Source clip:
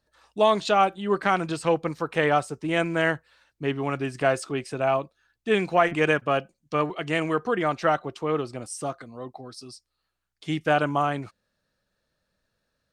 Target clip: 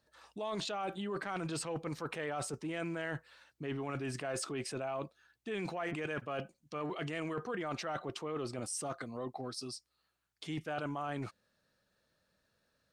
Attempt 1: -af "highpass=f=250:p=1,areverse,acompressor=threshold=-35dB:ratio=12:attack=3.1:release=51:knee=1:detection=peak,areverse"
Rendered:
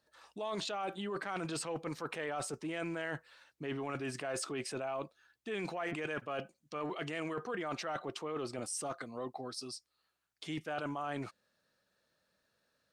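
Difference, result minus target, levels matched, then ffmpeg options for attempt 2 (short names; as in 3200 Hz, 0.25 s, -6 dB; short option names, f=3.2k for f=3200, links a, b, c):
125 Hz band -3.5 dB
-af "highpass=f=79:p=1,areverse,acompressor=threshold=-35dB:ratio=12:attack=3.1:release=51:knee=1:detection=peak,areverse"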